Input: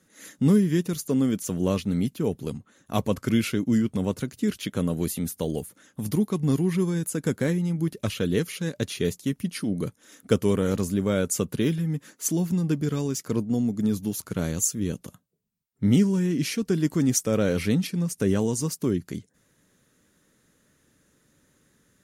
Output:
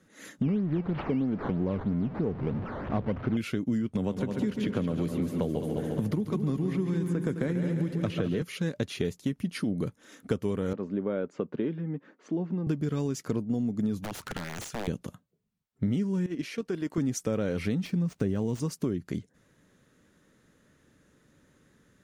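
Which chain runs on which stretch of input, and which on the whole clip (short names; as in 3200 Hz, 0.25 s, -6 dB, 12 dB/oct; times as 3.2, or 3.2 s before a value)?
0.42–3.37 zero-crossing step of -30 dBFS + decimation with a swept rate 12× 3.1 Hz + tape spacing loss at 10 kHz 40 dB
3.95–8.42 high shelf 4000 Hz -7.5 dB + multi-head echo 70 ms, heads second and third, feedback 55%, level -9.5 dB + three-band squash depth 70%
10.73–12.67 HPF 270 Hz + tape spacing loss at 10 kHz 44 dB
14.01–14.88 bell 1700 Hz +8.5 dB 2.1 oct + compressor 16:1, threshold -30 dBFS + wrapped overs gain 29 dB
16.26–16.98 tone controls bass -13 dB, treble -4 dB + level quantiser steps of 10 dB
17.85–18.6 switching dead time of 0.055 ms + low shelf 230 Hz +6 dB
whole clip: LPF 2900 Hz 6 dB/oct; compressor, threshold -28 dBFS; gain +2.5 dB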